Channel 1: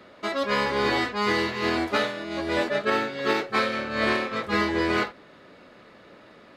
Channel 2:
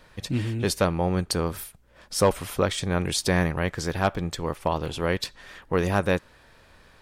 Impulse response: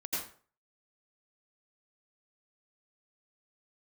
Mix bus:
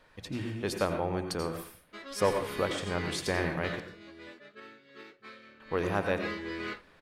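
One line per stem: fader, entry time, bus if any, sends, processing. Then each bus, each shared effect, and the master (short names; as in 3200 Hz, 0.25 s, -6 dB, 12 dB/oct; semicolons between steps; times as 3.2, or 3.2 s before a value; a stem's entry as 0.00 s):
3.86 s -12 dB -> 4.45 s -21 dB -> 5.72 s -21 dB -> 6.3 s -9 dB, 1.70 s, no send, bell 760 Hz -12.5 dB 1.2 oct
-8.0 dB, 0.00 s, muted 3.8–5.6, send -6.5 dB, notches 60/120/180 Hz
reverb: on, RT60 0.45 s, pre-delay 77 ms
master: tone controls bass -5 dB, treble -6 dB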